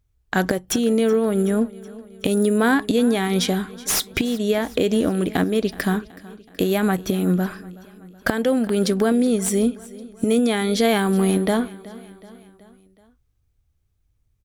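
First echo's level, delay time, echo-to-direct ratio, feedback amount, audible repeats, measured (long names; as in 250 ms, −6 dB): −20.0 dB, 374 ms, −18.5 dB, 55%, 3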